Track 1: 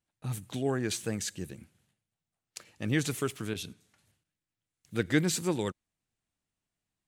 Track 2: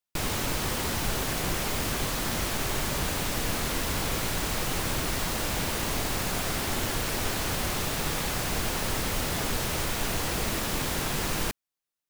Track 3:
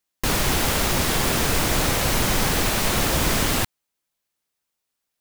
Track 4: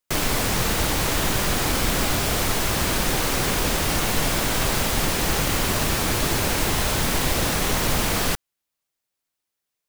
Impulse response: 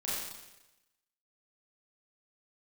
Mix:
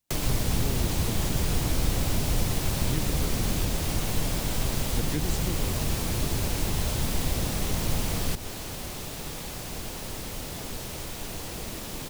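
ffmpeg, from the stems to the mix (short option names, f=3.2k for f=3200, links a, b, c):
-filter_complex "[0:a]volume=0dB[a];[1:a]adelay=1200,volume=-6dB[b];[2:a]volume=-4.5dB[c];[3:a]volume=-1.5dB[d];[a][b][c][d]amix=inputs=4:normalize=0,equalizer=f=1.5k:w=0.94:g=-6,acrossover=split=190[e][f];[f]acompressor=threshold=-30dB:ratio=6[g];[e][g]amix=inputs=2:normalize=0"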